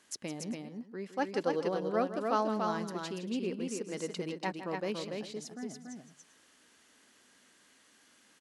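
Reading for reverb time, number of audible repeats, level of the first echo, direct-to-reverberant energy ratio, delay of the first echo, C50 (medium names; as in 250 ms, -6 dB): no reverb, 3, -12.0 dB, no reverb, 162 ms, no reverb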